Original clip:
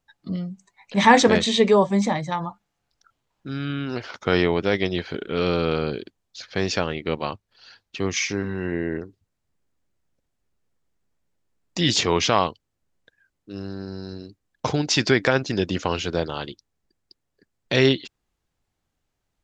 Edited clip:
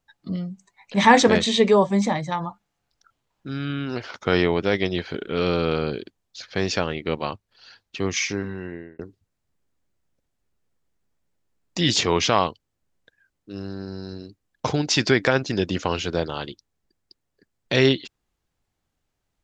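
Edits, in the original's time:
8.29–8.99 fade out

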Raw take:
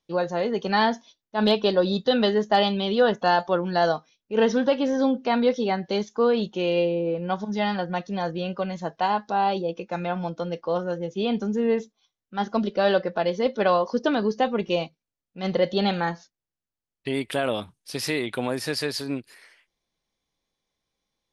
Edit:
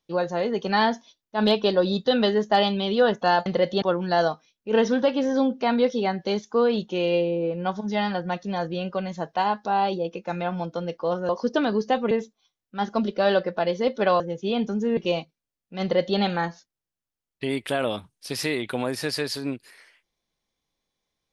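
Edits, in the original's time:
10.93–11.7 swap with 13.79–14.61
15.46–15.82 copy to 3.46

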